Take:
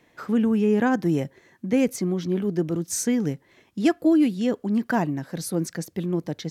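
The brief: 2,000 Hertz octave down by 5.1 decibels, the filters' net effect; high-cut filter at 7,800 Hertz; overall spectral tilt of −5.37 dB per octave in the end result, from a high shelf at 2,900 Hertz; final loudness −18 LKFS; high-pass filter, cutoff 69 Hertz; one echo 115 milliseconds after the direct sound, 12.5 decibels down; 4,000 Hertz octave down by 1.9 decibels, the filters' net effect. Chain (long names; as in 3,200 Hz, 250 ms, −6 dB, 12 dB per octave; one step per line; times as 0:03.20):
high-pass filter 69 Hz
low-pass filter 7,800 Hz
parametric band 2,000 Hz −8.5 dB
high-shelf EQ 2,900 Hz +7 dB
parametric band 4,000 Hz −6 dB
single-tap delay 115 ms −12.5 dB
level +6 dB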